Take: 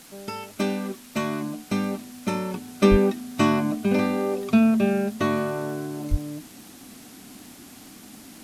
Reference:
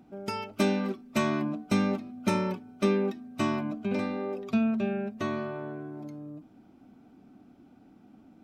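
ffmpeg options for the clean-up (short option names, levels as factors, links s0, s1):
-filter_complex "[0:a]adeclick=t=4,asplit=3[s0][s1][s2];[s0]afade=t=out:st=2.9:d=0.02[s3];[s1]highpass=f=140:w=0.5412,highpass=f=140:w=1.3066,afade=t=in:st=2.9:d=0.02,afade=t=out:st=3.02:d=0.02[s4];[s2]afade=t=in:st=3.02:d=0.02[s5];[s3][s4][s5]amix=inputs=3:normalize=0,asplit=3[s6][s7][s8];[s6]afade=t=out:st=6.1:d=0.02[s9];[s7]highpass=f=140:w=0.5412,highpass=f=140:w=1.3066,afade=t=in:st=6.1:d=0.02,afade=t=out:st=6.22:d=0.02[s10];[s8]afade=t=in:st=6.22:d=0.02[s11];[s9][s10][s11]amix=inputs=3:normalize=0,afwtdn=0.0045,asetnsamples=n=441:p=0,asendcmd='2.54 volume volume -8dB',volume=1"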